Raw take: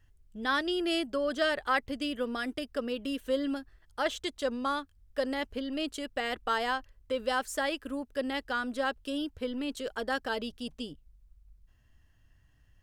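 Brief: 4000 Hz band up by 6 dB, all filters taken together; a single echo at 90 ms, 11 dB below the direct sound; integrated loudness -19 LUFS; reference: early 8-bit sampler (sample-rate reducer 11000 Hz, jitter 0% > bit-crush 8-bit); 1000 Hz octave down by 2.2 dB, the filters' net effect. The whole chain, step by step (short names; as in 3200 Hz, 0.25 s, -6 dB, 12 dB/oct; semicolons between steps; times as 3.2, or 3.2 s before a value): bell 1000 Hz -3.5 dB; bell 4000 Hz +8.5 dB; echo 90 ms -11 dB; sample-rate reducer 11000 Hz, jitter 0%; bit-crush 8-bit; gain +12.5 dB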